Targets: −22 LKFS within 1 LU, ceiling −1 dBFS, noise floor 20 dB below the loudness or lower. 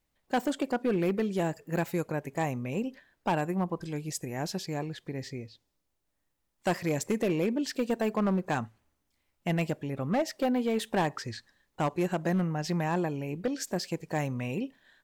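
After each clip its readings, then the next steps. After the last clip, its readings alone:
share of clipped samples 1.4%; peaks flattened at −21.5 dBFS; integrated loudness −31.5 LKFS; sample peak −21.5 dBFS; target loudness −22.0 LKFS
→ clipped peaks rebuilt −21.5 dBFS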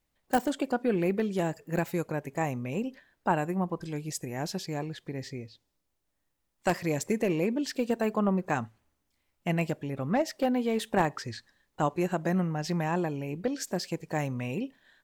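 share of clipped samples 0.0%; integrated loudness −31.0 LKFS; sample peak −12.5 dBFS; target loudness −22.0 LKFS
→ level +9 dB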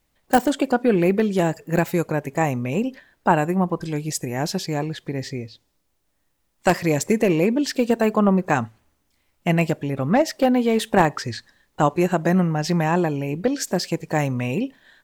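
integrated loudness −22.0 LKFS; sample peak −3.5 dBFS; background noise floor −69 dBFS

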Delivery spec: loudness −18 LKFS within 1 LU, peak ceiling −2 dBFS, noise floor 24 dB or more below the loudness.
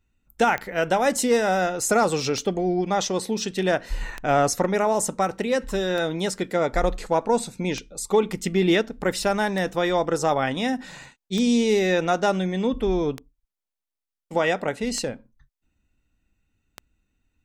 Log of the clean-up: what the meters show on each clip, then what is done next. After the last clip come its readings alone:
number of clicks 10; integrated loudness −23.5 LKFS; sample peak −10.0 dBFS; target loudness −18.0 LKFS
→ click removal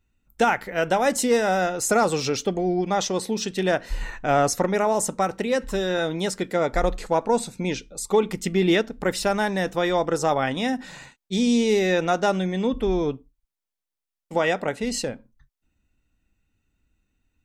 number of clicks 1; integrated loudness −23.5 LKFS; sample peak −10.0 dBFS; target loudness −18.0 LKFS
→ level +5.5 dB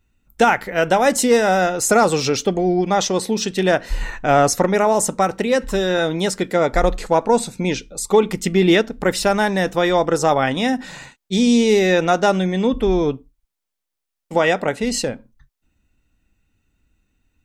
integrated loudness −18.0 LKFS; sample peak −4.5 dBFS; background noise floor −81 dBFS

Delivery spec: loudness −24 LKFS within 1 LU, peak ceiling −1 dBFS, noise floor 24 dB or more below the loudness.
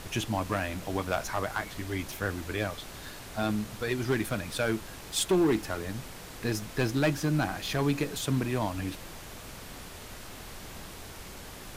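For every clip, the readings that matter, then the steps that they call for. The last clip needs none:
share of clipped samples 0.7%; peaks flattened at −19.5 dBFS; background noise floor −45 dBFS; target noise floor −55 dBFS; integrated loudness −31.0 LKFS; sample peak −19.5 dBFS; target loudness −24.0 LKFS
→ clipped peaks rebuilt −19.5 dBFS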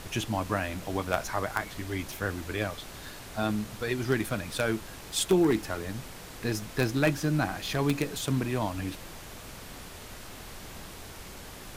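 share of clipped samples 0.0%; background noise floor −45 dBFS; target noise floor −55 dBFS
→ noise reduction from a noise print 10 dB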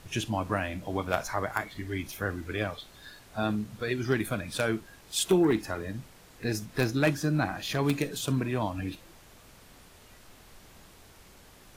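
background noise floor −55 dBFS; integrated loudness −30.5 LKFS; sample peak −10.5 dBFS; target loudness −24.0 LKFS
→ level +6.5 dB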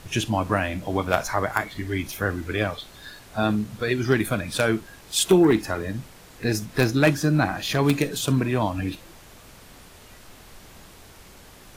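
integrated loudness −24.0 LKFS; sample peak −4.0 dBFS; background noise floor −48 dBFS

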